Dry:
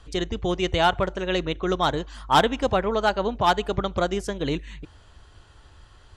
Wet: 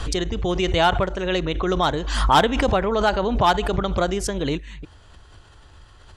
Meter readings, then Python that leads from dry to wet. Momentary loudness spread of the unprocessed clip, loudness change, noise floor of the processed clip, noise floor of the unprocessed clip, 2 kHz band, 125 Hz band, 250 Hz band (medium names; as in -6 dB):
8 LU, +3.0 dB, -49 dBFS, -52 dBFS, +2.5 dB, +5.0 dB, +3.0 dB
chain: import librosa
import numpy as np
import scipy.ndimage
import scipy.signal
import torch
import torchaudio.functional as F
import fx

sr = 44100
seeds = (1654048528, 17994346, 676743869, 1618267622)

y = fx.pre_swell(x, sr, db_per_s=45.0)
y = y * 10.0 ** (1.5 / 20.0)